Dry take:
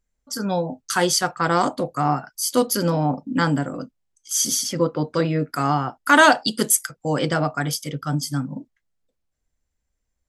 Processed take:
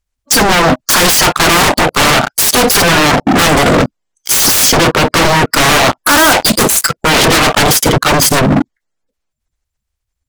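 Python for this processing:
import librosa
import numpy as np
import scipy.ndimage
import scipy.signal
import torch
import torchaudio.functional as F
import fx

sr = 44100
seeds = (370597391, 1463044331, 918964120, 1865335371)

y = fx.spec_quant(x, sr, step_db=30)
y = fx.leveller(y, sr, passes=5)
y = fx.fold_sine(y, sr, drive_db=10, ceiling_db=-2.0)
y = y * 10.0 ** (-2.0 / 20.0)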